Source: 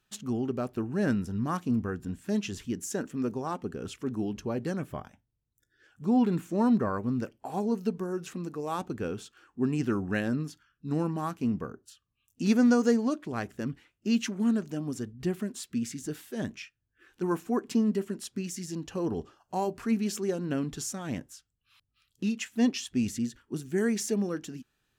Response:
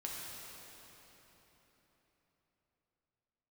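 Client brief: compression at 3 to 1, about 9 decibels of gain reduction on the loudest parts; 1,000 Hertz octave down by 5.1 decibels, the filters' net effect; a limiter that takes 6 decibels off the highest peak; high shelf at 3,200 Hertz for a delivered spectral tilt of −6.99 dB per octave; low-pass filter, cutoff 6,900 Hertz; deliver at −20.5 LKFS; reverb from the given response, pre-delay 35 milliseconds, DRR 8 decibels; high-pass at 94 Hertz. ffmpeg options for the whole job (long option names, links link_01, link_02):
-filter_complex "[0:a]highpass=94,lowpass=6900,equalizer=frequency=1000:width_type=o:gain=-6,highshelf=frequency=3200:gain=-8.5,acompressor=threshold=-32dB:ratio=3,alimiter=level_in=4dB:limit=-24dB:level=0:latency=1,volume=-4dB,asplit=2[link_01][link_02];[1:a]atrim=start_sample=2205,adelay=35[link_03];[link_02][link_03]afir=irnorm=-1:irlink=0,volume=-8.5dB[link_04];[link_01][link_04]amix=inputs=2:normalize=0,volume=17dB"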